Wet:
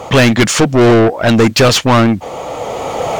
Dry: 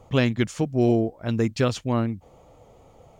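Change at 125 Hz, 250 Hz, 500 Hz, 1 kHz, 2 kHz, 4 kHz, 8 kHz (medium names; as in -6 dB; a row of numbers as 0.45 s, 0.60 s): +11.0 dB, +12.5 dB, +14.5 dB, +19.0 dB, +18.0 dB, +20.0 dB, +23.0 dB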